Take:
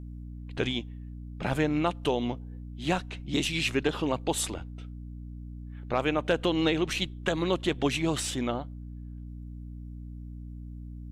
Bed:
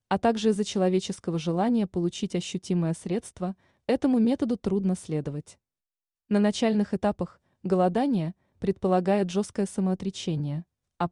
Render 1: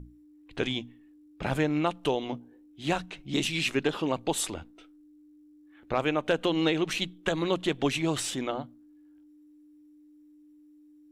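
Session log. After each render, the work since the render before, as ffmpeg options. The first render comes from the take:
-af "bandreject=f=60:t=h:w=6,bandreject=f=120:t=h:w=6,bandreject=f=180:t=h:w=6,bandreject=f=240:t=h:w=6"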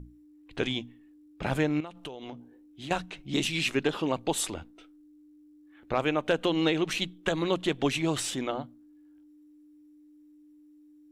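-filter_complex "[0:a]asettb=1/sr,asplit=3[s0][s1][s2];[s0]atrim=end=1.804[s3];[s1]atrim=start=1.8:end=2.91,asetpts=PTS-STARTPTS,afade=t=in:d=0.004:c=qsin,afade=t=out:st=1.106:d=0.004:c=qsin,acompressor=threshold=0.0158:ratio=10:attack=3.2:release=140:knee=1:detection=peak[s4];[s2]atrim=start=2.906[s5];[s3][s4]acrossfade=d=0.004:c1=hsin:c2=qsin[s6];[s6][s5]acrossfade=d=0.004:c1=qsin:c2=hsin"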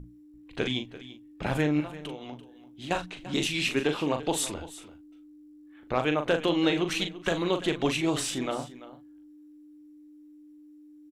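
-filter_complex "[0:a]asplit=2[s0][s1];[s1]adelay=40,volume=0.422[s2];[s0][s2]amix=inputs=2:normalize=0,aecho=1:1:340:0.158"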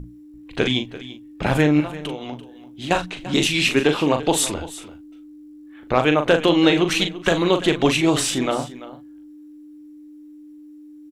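-af "volume=2.82"

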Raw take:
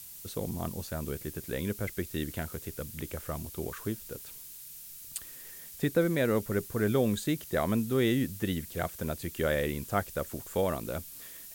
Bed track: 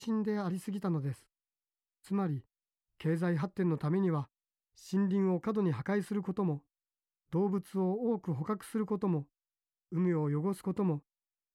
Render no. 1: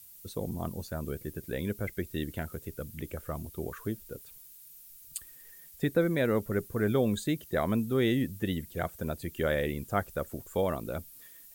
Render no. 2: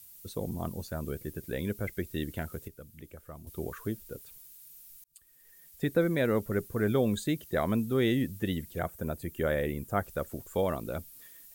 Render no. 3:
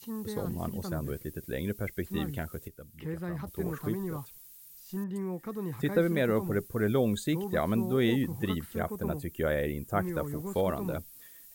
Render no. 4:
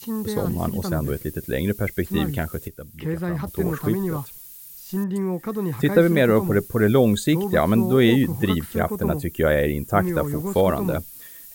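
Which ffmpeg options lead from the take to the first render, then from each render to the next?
-af "afftdn=nr=10:nf=-47"
-filter_complex "[0:a]asettb=1/sr,asplit=3[s0][s1][s2];[s0]atrim=end=8.794[s3];[s1]atrim=start=8.79:end=10.04,asetpts=PTS-STARTPTS,afade=t=in:d=0.004:c=qsin,afade=t=out:st=1.246:d=0.004:c=qsin,equalizer=f=4000:w=0.84:g=-6[s4];[s2]atrim=start=10.036[s5];[s3][s4]acrossfade=d=0.004:c1=hsin:c2=qsin[s6];[s6][s5]acrossfade=d=0.004:c1=qsin:c2=hsin,asplit=4[s7][s8][s9][s10];[s7]atrim=end=2.682[s11];[s8]atrim=start=2.678:end=3.472,asetpts=PTS-STARTPTS,volume=0.335[s12];[s9]atrim=start=3.468:end=5.04,asetpts=PTS-STARTPTS,afade=t=out:st=1.568:d=0.004:c=hsin[s13];[s10]atrim=start=5.04,asetpts=PTS-STARTPTS,afade=t=in:d=0.92[s14];[s11][s12]acrossfade=d=0.004:c1=hsin:c2=hsin[s15];[s13][s14]concat=n=2:v=0:a=1[s16];[s15][s16]acrossfade=d=0.004:c1=hsin:c2=hsin"
-filter_complex "[1:a]volume=0.562[s0];[0:a][s0]amix=inputs=2:normalize=0"
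-af "volume=3.16"

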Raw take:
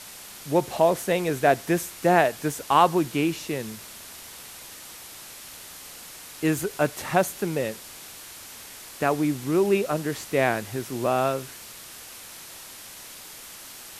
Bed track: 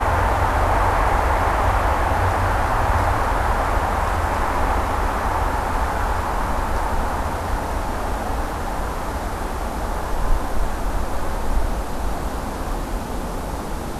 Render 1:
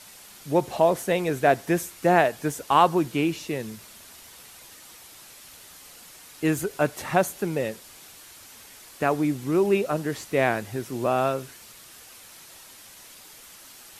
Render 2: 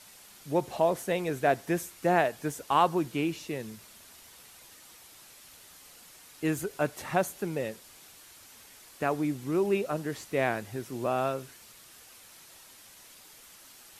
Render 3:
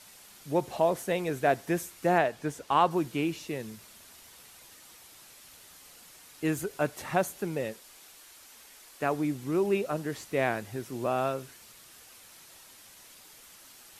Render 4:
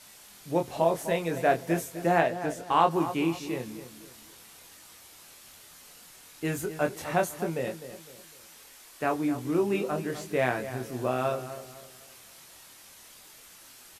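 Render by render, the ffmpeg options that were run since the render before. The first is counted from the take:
-af "afftdn=nr=6:nf=-43"
-af "volume=0.531"
-filter_complex "[0:a]asettb=1/sr,asplit=3[s0][s1][s2];[s0]atrim=end=2.184[s3];[s1]atrim=start=2.18:end=2.91,asetpts=PTS-STARTPTS,afade=t=in:d=0.004:c=qsin,afade=t=out:st=0.726:d=0.004:c=qsin,highshelf=f=8800:g=-11[s4];[s2]atrim=start=2.906[s5];[s3][s4]acrossfade=d=0.004:c1=hsin:c2=qsin[s6];[s6][s5]acrossfade=d=0.004:c1=qsin:c2=hsin,asettb=1/sr,asplit=3[s7][s8][s9];[s7]atrim=end=7.734[s10];[s8]atrim=start=7.73:end=9.03,asetpts=PTS-STARTPTS,afade=t=in:d=0.004:c=qsin,afade=t=out:st=1.296:d=0.004:c=qsin,equalizer=f=110:w=0.65:g=-9.5[s11];[s9]atrim=start=9.026[s12];[s10][s11]acrossfade=d=0.004:c1=hsin:c2=qsin[s13];[s13][s12]acrossfade=d=0.004:c1=qsin:c2=hsin"
-filter_complex "[0:a]asplit=2[s0][s1];[s1]adelay=24,volume=0.562[s2];[s0][s2]amix=inputs=2:normalize=0,asplit=2[s3][s4];[s4]adelay=254,lowpass=f=2000:p=1,volume=0.266,asplit=2[s5][s6];[s6]adelay=254,lowpass=f=2000:p=1,volume=0.37,asplit=2[s7][s8];[s8]adelay=254,lowpass=f=2000:p=1,volume=0.37,asplit=2[s9][s10];[s10]adelay=254,lowpass=f=2000:p=1,volume=0.37[s11];[s3][s5][s7][s9][s11]amix=inputs=5:normalize=0"

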